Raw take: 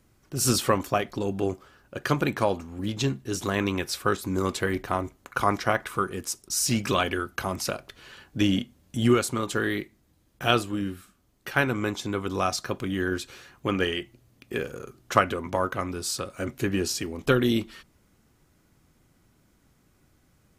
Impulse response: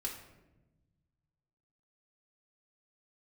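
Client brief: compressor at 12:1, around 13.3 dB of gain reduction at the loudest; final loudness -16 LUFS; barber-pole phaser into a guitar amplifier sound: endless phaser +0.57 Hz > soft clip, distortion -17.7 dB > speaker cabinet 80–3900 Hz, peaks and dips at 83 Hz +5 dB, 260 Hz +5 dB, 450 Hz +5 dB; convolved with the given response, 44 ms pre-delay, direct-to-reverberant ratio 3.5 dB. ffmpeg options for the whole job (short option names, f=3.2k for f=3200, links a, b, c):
-filter_complex "[0:a]acompressor=threshold=-28dB:ratio=12,asplit=2[a][b];[1:a]atrim=start_sample=2205,adelay=44[c];[b][c]afir=irnorm=-1:irlink=0,volume=-4dB[d];[a][d]amix=inputs=2:normalize=0,asplit=2[e][f];[f]afreqshift=0.57[g];[e][g]amix=inputs=2:normalize=1,asoftclip=threshold=-26.5dB,highpass=80,equalizer=f=83:t=q:w=4:g=5,equalizer=f=260:t=q:w=4:g=5,equalizer=f=450:t=q:w=4:g=5,lowpass=f=3.9k:w=0.5412,lowpass=f=3.9k:w=1.3066,volume=20dB"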